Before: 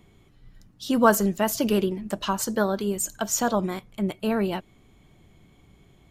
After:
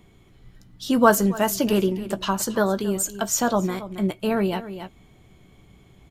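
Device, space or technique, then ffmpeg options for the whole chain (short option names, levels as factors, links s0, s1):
ducked delay: -filter_complex "[0:a]asplit=3[s0][s1][s2];[s1]adelay=274,volume=0.531[s3];[s2]apad=whole_len=281368[s4];[s3][s4]sidechaincompress=threshold=0.0178:ratio=5:attack=16:release=416[s5];[s0][s5]amix=inputs=2:normalize=0,asplit=2[s6][s7];[s7]adelay=16,volume=0.224[s8];[s6][s8]amix=inputs=2:normalize=0,volume=1.26"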